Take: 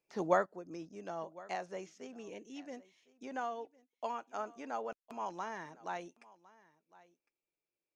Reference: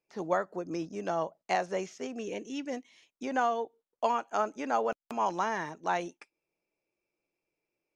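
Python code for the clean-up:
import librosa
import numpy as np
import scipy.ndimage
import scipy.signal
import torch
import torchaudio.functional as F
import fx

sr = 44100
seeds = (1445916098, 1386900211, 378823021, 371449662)

y = fx.fix_echo_inverse(x, sr, delay_ms=1057, level_db=-21.5)
y = fx.gain(y, sr, db=fx.steps((0.0, 0.0), (0.46, 10.5)))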